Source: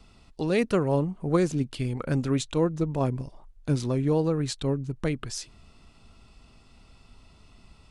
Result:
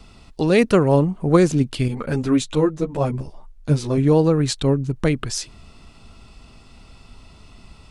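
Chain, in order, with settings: 1.88–3.98 ensemble effect; gain +8.5 dB

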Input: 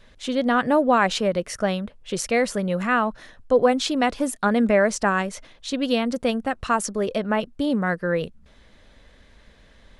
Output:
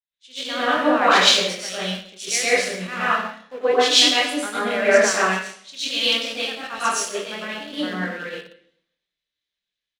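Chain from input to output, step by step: bell 65 Hz -11.5 dB 2.6 oct; doubler 27 ms -6 dB; reverb RT60 1.0 s, pre-delay 94 ms, DRR -8 dB; in parallel at -9.5 dB: sample gate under -17.5 dBFS; on the sum: weighting filter D; three-band expander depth 100%; gain -13 dB

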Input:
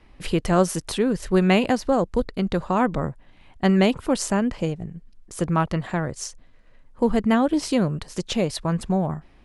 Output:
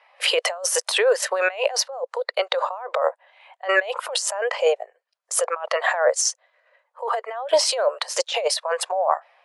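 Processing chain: steep high-pass 530 Hz 48 dB/oct; negative-ratio compressor -35 dBFS, ratio -1; spectral expander 1.5:1; gain +7 dB

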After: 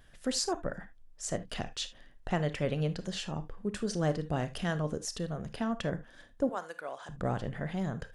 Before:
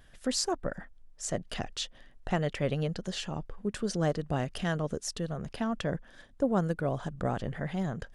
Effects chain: 6.49–7.09 HPF 820 Hz 12 dB/oct; reverb, pre-delay 26 ms, DRR 11.5 dB; gain -1.5 dB

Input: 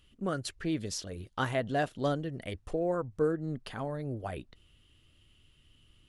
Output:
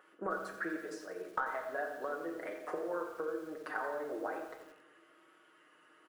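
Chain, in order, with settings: comb 6.4 ms, depth 65%; vibrato 0.99 Hz 33 cents; HPF 370 Hz 24 dB/oct; compressor 20:1, threshold -46 dBFS, peak gain reduction 25.5 dB; resonant high shelf 2200 Hz -12.5 dB, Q 3; reverb RT60 1.0 s, pre-delay 5 ms, DRR 2.5 dB; lo-fi delay 88 ms, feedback 55%, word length 10-bit, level -11 dB; gain +8 dB

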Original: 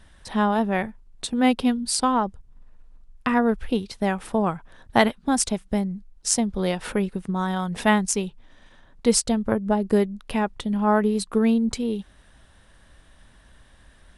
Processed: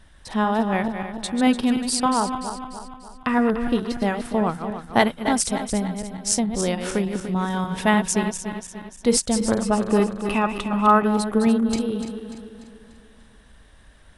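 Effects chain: regenerating reverse delay 0.147 s, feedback 68%, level -8 dB; 9.61–11.06 small resonant body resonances 1200/2600 Hz, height 12 dB -> 16 dB, ringing for 20 ms

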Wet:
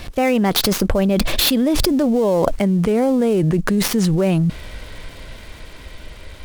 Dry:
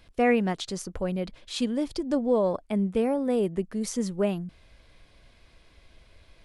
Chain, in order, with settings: switching dead time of 0.064 ms; Doppler pass-by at 2.07, 21 m/s, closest 3.7 m; fast leveller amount 100%; gain +5.5 dB

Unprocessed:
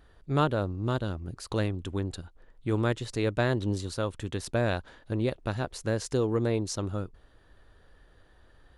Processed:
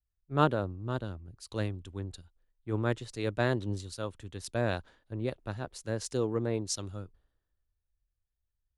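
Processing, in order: three-band expander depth 100%; gain -5 dB

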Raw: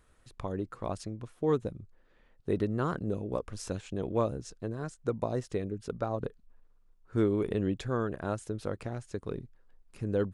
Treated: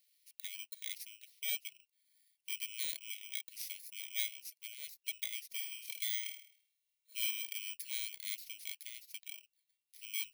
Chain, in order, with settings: FFT order left unsorted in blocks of 16 samples; steep high-pass 2000 Hz 72 dB/oct; 5.53–7.31 flutter echo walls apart 4.5 m, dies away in 0.55 s

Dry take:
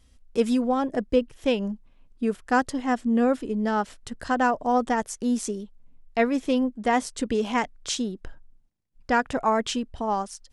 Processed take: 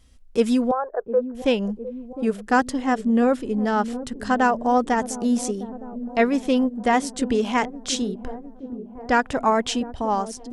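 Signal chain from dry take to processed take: 0.71–1.35 Chebyshev band-pass 420–1600 Hz, order 4; dark delay 0.707 s, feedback 65%, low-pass 530 Hz, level -11.5 dB; gain +3 dB

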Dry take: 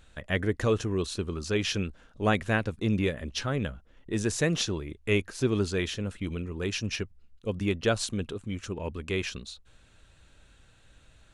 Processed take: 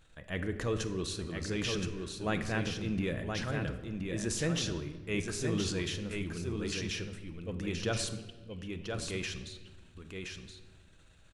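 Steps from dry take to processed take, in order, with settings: transient shaper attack -3 dB, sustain +7 dB; 8.16–8.93 band-pass 3000 Hz, Q 8.6; echo 1.022 s -5 dB; shoebox room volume 1200 m³, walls mixed, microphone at 0.65 m; gain -7 dB

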